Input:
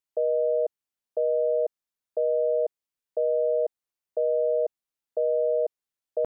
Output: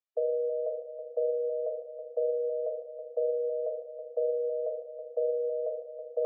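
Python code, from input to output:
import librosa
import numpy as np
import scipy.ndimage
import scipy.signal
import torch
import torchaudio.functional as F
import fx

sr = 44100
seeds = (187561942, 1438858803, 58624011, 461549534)

p1 = fx.brickwall_highpass(x, sr, low_hz=410.0)
p2 = fx.air_absorb(p1, sr, metres=120.0)
p3 = p2 + 0.99 * np.pad(p2, (int(1.7 * sr / 1000.0), 0))[:len(p2)]
p4 = p3 + fx.echo_feedback(p3, sr, ms=324, feedback_pct=52, wet_db=-9.5, dry=0)
p5 = fx.rev_fdn(p4, sr, rt60_s=0.92, lf_ratio=1.0, hf_ratio=0.75, size_ms=12.0, drr_db=1.0)
y = p5 * librosa.db_to_amplitude(-8.5)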